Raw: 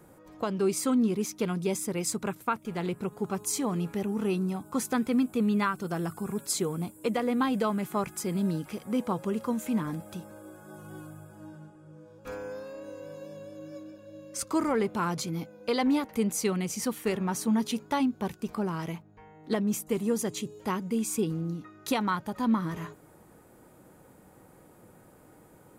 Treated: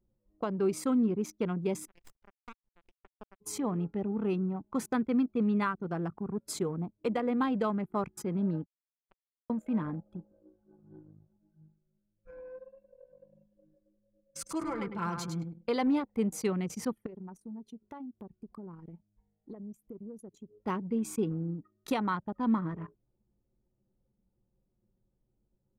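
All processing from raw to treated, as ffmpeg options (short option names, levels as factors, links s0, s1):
-filter_complex "[0:a]asettb=1/sr,asplit=3[s0][s1][s2];[s0]atrim=end=1.874[s3];[s1]atrim=start=1.87:end=3.41,asetpts=PTS-STARTPTS,afade=t=in:d=0.004:c=qsin,afade=t=out:st=1.536:d=0.004:c=qsin,tiltshelf=f=710:g=-6,acompressor=threshold=0.00794:ratio=2.5:attack=3.2:release=140:knee=1:detection=peak,acrusher=bits=3:dc=4:mix=0:aa=0.000001[s4];[s2]atrim=start=3.406[s5];[s3][s4]acrossfade=d=0.004:c1=hsin:c2=qsin[s6];[s6][s5]acrossfade=d=0.004:c1=qsin:c2=hsin,asettb=1/sr,asplit=3[s7][s8][s9];[s7]atrim=end=8.654[s10];[s8]atrim=start=8.65:end=9.5,asetpts=PTS-STARTPTS,afade=t=in:d=0.004:c=qsin,afade=t=out:st=0.846:d=0.004:c=qsin,highpass=f=380:w=0.5412,highpass=f=380:w=1.3066,acrusher=bits=2:mix=0:aa=0.5[s11];[s9]atrim=start=9.496[s12];[s10][s11]acrossfade=d=0.004:c1=hsin:c2=qsin[s13];[s13][s12]acrossfade=d=0.004:c1=qsin:c2=hsin,asettb=1/sr,asplit=3[s14][s15][s16];[s14]atrim=end=11.374[s17];[s15]atrim=start=11.37:end=15.68,asetpts=PTS-STARTPTS,afade=t=in:d=0.004:c=qsin,afade=t=out:st=4.306:d=0.004:c=qsin,equalizer=f=440:t=o:w=3:g=-10,aecho=1:1:5.9:0.74,atrim=end_sample=190071,aecho=1:1:102|204|306|408:0.531|0.196|0.0727|0.0269,atrim=end_sample=190071[s18];[s16]atrim=start=15.676[s19];[s17][s18]acrossfade=d=0.004:c1=hsin:c2=qsin[s20];[s20][s19]acrossfade=d=0.004:c1=qsin:c2=hsin,asettb=1/sr,asplit=3[s21][s22][s23];[s21]atrim=end=17.064[s24];[s22]atrim=start=17.06:end=20.65,asetpts=PTS-STARTPTS,afade=t=in:d=0.004:c=qsin,afade=t=out:st=3.586:d=0.004:c=qsin,highshelf=f=7600:g=10.5,acompressor=threshold=0.0126:ratio=6:attack=3.2:release=140:knee=1:detection=peak[s25];[s23]atrim=start=20.646[s26];[s24][s25]acrossfade=d=0.004:c1=hsin:c2=qsin[s27];[s27][s26]acrossfade=d=0.004:c1=qsin:c2=hsin,anlmdn=2.51,highshelf=f=3300:g=-8.5,volume=0.794"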